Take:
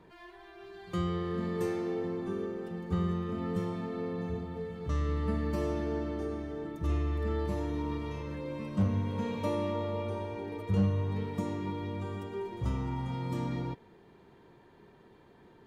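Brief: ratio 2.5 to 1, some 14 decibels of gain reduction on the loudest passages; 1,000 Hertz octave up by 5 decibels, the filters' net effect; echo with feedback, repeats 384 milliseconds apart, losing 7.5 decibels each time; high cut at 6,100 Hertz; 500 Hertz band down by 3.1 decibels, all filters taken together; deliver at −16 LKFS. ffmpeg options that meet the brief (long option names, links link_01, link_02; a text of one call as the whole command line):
ffmpeg -i in.wav -af "lowpass=6100,equalizer=frequency=500:width_type=o:gain=-5.5,equalizer=frequency=1000:width_type=o:gain=7,acompressor=threshold=-45dB:ratio=2.5,aecho=1:1:384|768|1152|1536|1920:0.422|0.177|0.0744|0.0312|0.0131,volume=27.5dB" out.wav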